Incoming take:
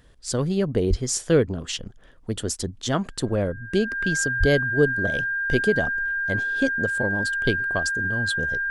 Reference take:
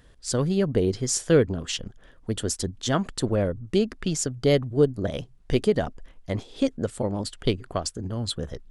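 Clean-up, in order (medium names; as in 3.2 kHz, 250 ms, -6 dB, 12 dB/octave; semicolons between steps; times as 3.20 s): band-stop 1.6 kHz, Q 30; 0.89–1.01 s: high-pass 140 Hz 24 dB/octave; 4.39–4.51 s: high-pass 140 Hz 24 dB/octave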